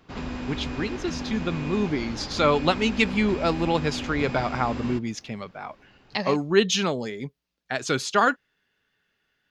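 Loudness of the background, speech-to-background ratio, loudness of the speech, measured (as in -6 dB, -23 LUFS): -33.5 LUFS, 8.0 dB, -25.5 LUFS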